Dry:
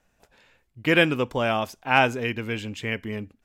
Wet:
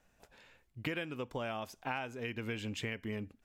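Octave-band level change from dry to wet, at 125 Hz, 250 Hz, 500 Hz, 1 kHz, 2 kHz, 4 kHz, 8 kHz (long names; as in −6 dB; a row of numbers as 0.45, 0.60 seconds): −12.0, −13.5, −15.5, −17.0, −17.0, −15.0, −8.5 decibels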